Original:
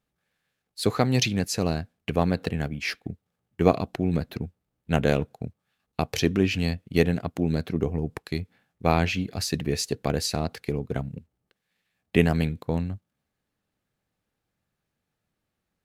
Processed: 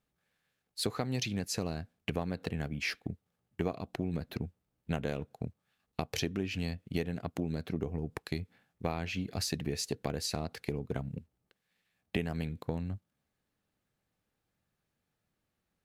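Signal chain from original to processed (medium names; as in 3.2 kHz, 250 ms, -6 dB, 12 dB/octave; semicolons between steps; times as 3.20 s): compression 6:1, threshold -28 dBFS, peak gain reduction 15.5 dB; trim -2 dB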